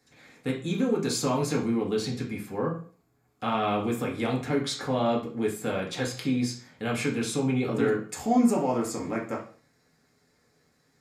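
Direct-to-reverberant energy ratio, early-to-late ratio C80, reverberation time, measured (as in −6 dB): −2.5 dB, 13.5 dB, 0.45 s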